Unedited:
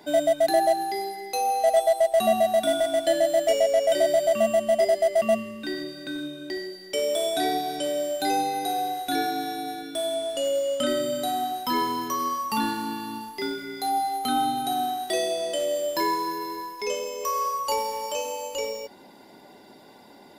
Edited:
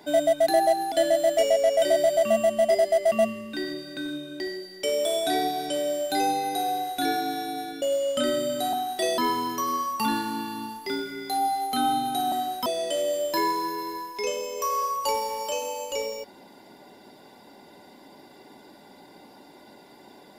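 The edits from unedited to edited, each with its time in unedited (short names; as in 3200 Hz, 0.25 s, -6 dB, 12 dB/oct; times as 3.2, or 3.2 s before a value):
0.92–3.02 cut
9.92–10.45 cut
11.36–11.7 swap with 14.84–15.29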